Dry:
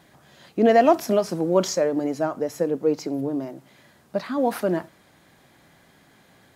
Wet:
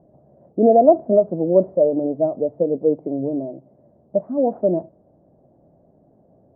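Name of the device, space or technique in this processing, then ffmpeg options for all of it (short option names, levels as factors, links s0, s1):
under water: -af "lowpass=f=610:w=0.5412,lowpass=f=610:w=1.3066,equalizer=f=630:t=o:w=0.48:g=8.5,volume=1.26"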